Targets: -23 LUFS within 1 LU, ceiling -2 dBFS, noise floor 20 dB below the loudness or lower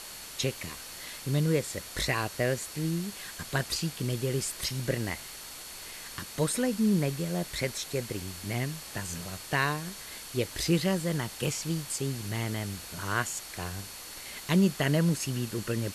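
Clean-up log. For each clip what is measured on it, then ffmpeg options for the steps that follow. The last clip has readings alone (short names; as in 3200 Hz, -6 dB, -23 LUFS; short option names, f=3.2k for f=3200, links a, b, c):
steady tone 4400 Hz; tone level -51 dBFS; noise floor -44 dBFS; noise floor target -52 dBFS; loudness -31.5 LUFS; peak -13.0 dBFS; loudness target -23.0 LUFS
-> -af "bandreject=f=4.4k:w=30"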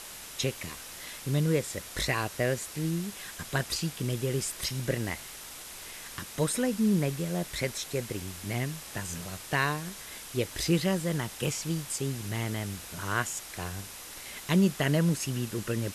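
steady tone none; noise floor -44 dBFS; noise floor target -52 dBFS
-> -af "afftdn=nr=8:nf=-44"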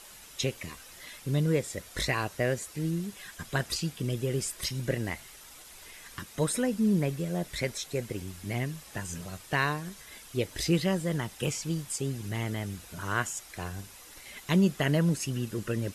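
noise floor -50 dBFS; noise floor target -51 dBFS
-> -af "afftdn=nr=6:nf=-50"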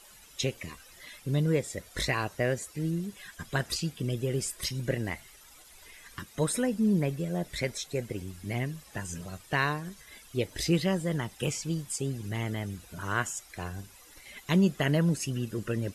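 noise floor -54 dBFS; loudness -31.0 LUFS; peak -13.5 dBFS; loudness target -23.0 LUFS
-> -af "volume=8dB"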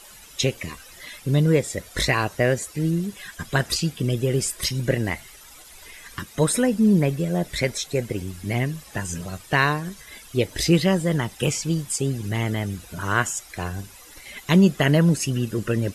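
loudness -23.0 LUFS; peak -5.5 dBFS; noise floor -46 dBFS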